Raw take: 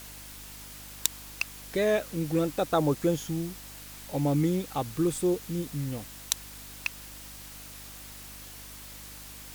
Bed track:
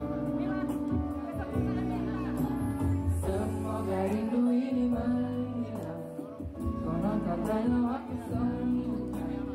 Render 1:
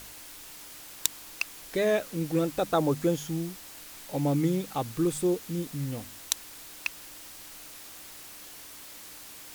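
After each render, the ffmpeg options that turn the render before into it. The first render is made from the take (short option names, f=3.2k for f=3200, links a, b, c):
-af "bandreject=f=50:t=h:w=4,bandreject=f=100:t=h:w=4,bandreject=f=150:t=h:w=4,bandreject=f=200:t=h:w=4,bandreject=f=250:t=h:w=4"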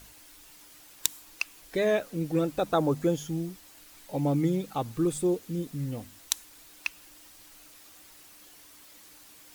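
-af "afftdn=nr=8:nf=-46"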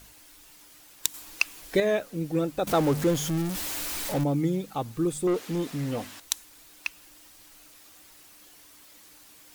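-filter_complex "[0:a]asettb=1/sr,asplit=3[a][b][c];[a]atrim=end=2.674[d];[b]atrim=start=2.67:end=4.24,asetpts=PTS-STARTPTS,afade=t=in:d=0.004:c=qsin,afade=t=out:st=1.566:d=0.004:c=qsin,aeval=exprs='val(0)+0.5*0.0422*sgn(val(0))':c=same[e];[c]atrim=start=4.236[f];[d][e]acrossfade=d=0.004:c1=hsin:c2=qsin[g];[g][f]acrossfade=d=0.004:c1=qsin:c2=hsin,asettb=1/sr,asplit=3[h][i][j];[h]atrim=end=5.274[k];[i]atrim=start=5.27:end=6.2,asetpts=PTS-STARTPTS,afade=t=in:d=0.004:c=qsin,afade=t=out:st=0.926:d=0.004:c=qsin,asplit=2[l][m];[m]highpass=f=720:p=1,volume=21dB,asoftclip=type=tanh:threshold=-18dB[n];[l][n]amix=inputs=2:normalize=0,lowpass=f=3k:p=1,volume=-6dB[o];[j]atrim=start=6.196[p];[k][o]acrossfade=d=0.004:c1=hsin:c2=qsin[q];[q][p]acrossfade=d=0.004:c1=qsin:c2=hsin,asplit=3[r][s][t];[r]atrim=end=1.142[u];[s]atrim=start=1.138:end=1.802,asetpts=PTS-STARTPTS,volume=6.5dB[v];[t]atrim=start=1.798[w];[u][v]acrossfade=d=0.004:c1=hsin:c2=hsin[x];[x][w]acrossfade=d=0.004:c1=hsin:c2=hsin"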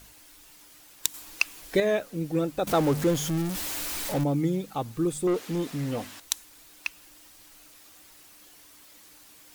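-af anull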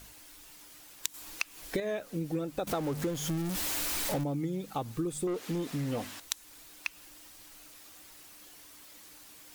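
-af "acompressor=threshold=-29dB:ratio=12"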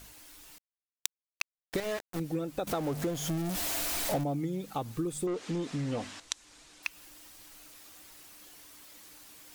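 -filter_complex "[0:a]asettb=1/sr,asplit=3[a][b][c];[a]atrim=end=0.584[d];[b]atrim=start=0.58:end=2.2,asetpts=PTS-STARTPTS,afade=t=in:d=0.004:c=qsin,afade=t=out:st=1.616:d=0.004:c=qsin,aeval=exprs='val(0)*gte(abs(val(0)),0.0211)':c=same[e];[c]atrim=start=2.196[f];[d][e]acrossfade=d=0.004:c1=hsin:c2=qsin[g];[g][f]acrossfade=d=0.004:c1=qsin:c2=hsin,asettb=1/sr,asplit=3[h][i][j];[h]atrim=end=2.804[k];[i]atrim=start=2.8:end=4.4,asetpts=PTS-STARTPTS,afade=t=in:d=0.004:c=qsin,afade=t=out:st=1.596:d=0.004:c=qsin,equalizer=f=680:w=7:g=10[l];[j]atrim=start=4.396[m];[k][l]acrossfade=d=0.004:c1=hsin:c2=qsin[n];[n][m]acrossfade=d=0.004:c1=qsin:c2=hsin,asettb=1/sr,asplit=3[o][p][q];[o]atrim=end=5.264[r];[p]atrim=start=5.26:end=6.83,asetpts=PTS-STARTPTS,afade=t=in:d=0.004:c=qsin,afade=t=out:st=1.566:d=0.004:c=qsin,lowpass=f=8.3k:w=0.5412,lowpass=f=8.3k:w=1.3066[s];[q]atrim=start=6.826[t];[r][s]acrossfade=d=0.004:c1=hsin:c2=qsin[u];[u][t]acrossfade=d=0.004:c1=qsin:c2=hsin"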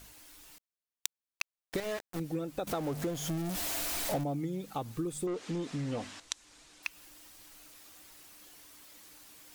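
-af "volume=-2dB"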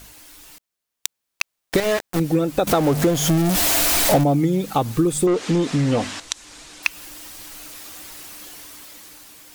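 -af "dynaudnorm=f=310:g=7:m=7dB,alimiter=level_in=9.5dB:limit=-1dB:release=50:level=0:latency=1"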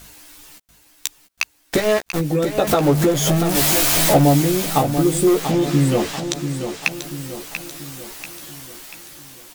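-filter_complex "[0:a]asplit=2[a][b];[b]adelay=14,volume=-5.5dB[c];[a][c]amix=inputs=2:normalize=0,aecho=1:1:688|1376|2064|2752|3440|4128:0.355|0.174|0.0852|0.0417|0.0205|0.01"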